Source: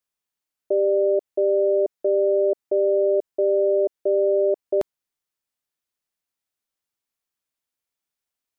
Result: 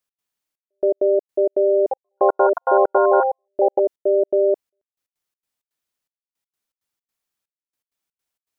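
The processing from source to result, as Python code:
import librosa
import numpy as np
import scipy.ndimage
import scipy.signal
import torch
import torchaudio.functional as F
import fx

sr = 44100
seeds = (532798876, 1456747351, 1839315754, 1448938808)

y = fx.echo_pitch(x, sr, ms=132, semitones=5, count=3, db_per_echo=-3.0, at=(1.78, 4.29))
y = fx.step_gate(y, sr, bpm=163, pattern='x.xxxx...x.xx.x', floor_db=-60.0, edge_ms=4.5)
y = F.gain(torch.from_numpy(y), 3.0).numpy()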